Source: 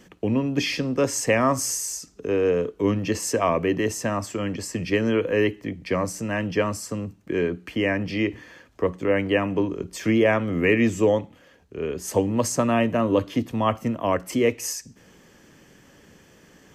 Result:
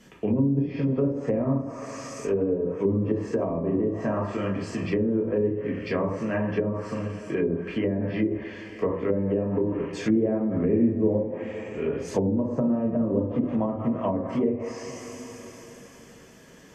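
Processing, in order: two-slope reverb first 0.56 s, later 4.8 s, from -19 dB, DRR -4 dB; low-pass that closes with the level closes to 400 Hz, closed at -14 dBFS; trim -4.5 dB

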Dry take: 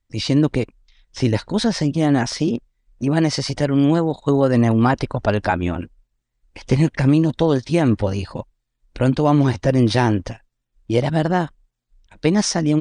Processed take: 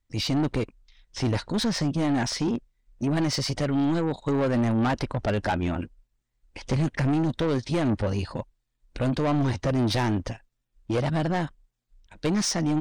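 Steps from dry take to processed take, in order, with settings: saturation -18 dBFS, distortion -8 dB; trim -2 dB

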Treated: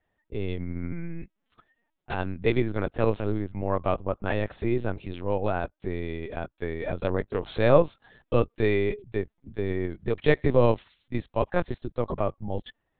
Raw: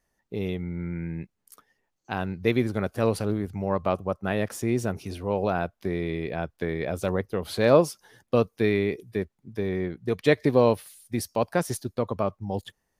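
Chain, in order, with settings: LPC vocoder at 8 kHz pitch kept; 5.38–6.86 s: upward expansion 1.5:1, over -40 dBFS

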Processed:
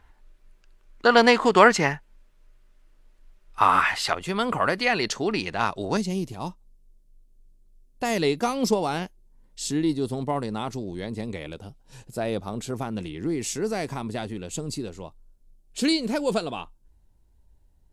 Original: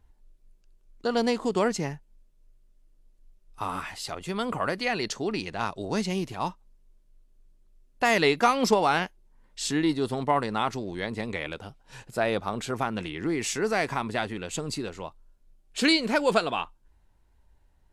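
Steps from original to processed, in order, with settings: peaking EQ 1.6 kHz +13.5 dB 2.6 oct, from 4.13 s +3 dB, from 5.97 s -11.5 dB; trim +3 dB

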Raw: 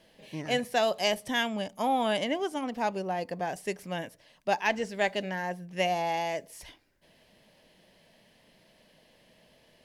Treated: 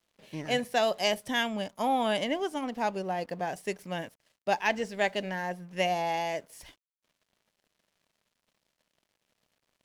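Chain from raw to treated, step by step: crossover distortion -57 dBFS

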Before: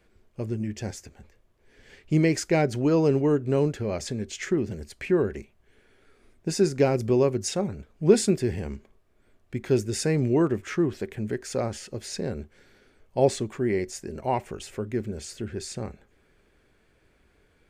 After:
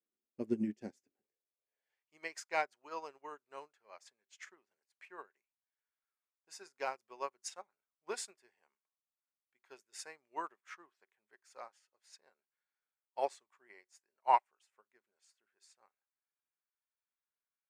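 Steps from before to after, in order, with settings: high-pass sweep 250 Hz -> 1 kHz, 1.00–2.10 s; upward expansion 2.5:1, over -44 dBFS; trim -1.5 dB

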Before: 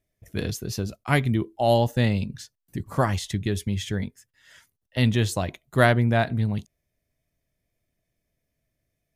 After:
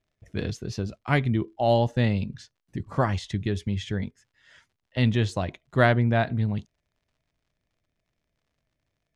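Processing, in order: crackle 100 per s -56 dBFS; distance through air 100 m; trim -1 dB

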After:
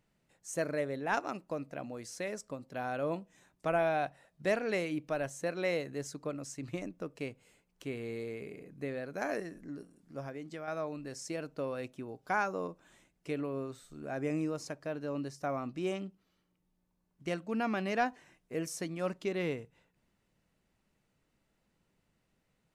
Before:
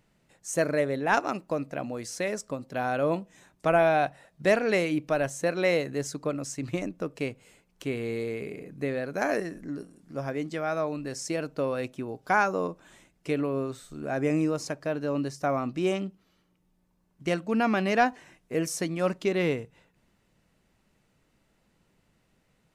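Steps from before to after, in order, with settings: 10.25–10.68 s: compression, threshold -31 dBFS, peak gain reduction 5.5 dB; trim -8 dB

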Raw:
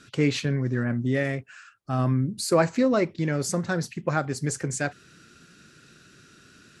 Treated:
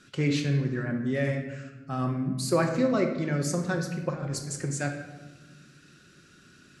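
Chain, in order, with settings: 4.10–4.51 s: compressor with a negative ratio -34 dBFS, ratio -1; reverberation RT60 1.2 s, pre-delay 5 ms, DRR 3.5 dB; trim -4.5 dB

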